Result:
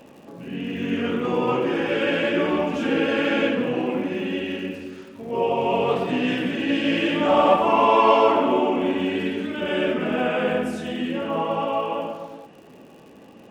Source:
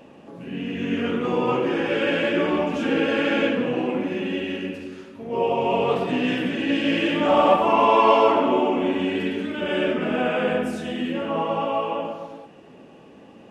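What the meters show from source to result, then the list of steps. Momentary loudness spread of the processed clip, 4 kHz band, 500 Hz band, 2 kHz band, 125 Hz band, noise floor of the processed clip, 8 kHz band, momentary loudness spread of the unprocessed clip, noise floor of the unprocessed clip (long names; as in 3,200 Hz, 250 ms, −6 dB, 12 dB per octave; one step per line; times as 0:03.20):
13 LU, 0.0 dB, 0.0 dB, 0.0 dB, 0.0 dB, −47 dBFS, can't be measured, 13 LU, −47 dBFS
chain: surface crackle 150 per second −43 dBFS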